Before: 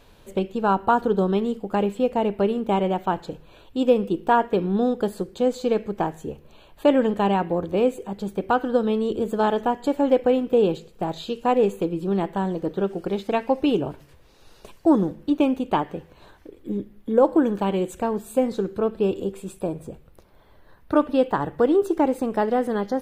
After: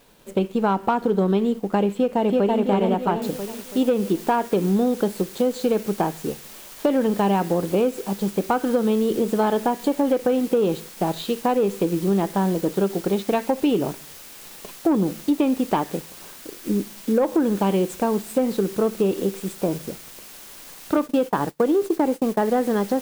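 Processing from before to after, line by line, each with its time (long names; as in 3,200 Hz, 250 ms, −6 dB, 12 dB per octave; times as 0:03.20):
0:01.95–0:02.61: delay throw 330 ms, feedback 45%, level −1 dB
0:03.22: noise floor change −60 dB −44 dB
0:20.97–0:22.55: downward expander −27 dBFS
whole clip: leveller curve on the samples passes 1; downward compressor, threshold −17 dBFS; low shelf with overshoot 130 Hz −7.5 dB, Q 1.5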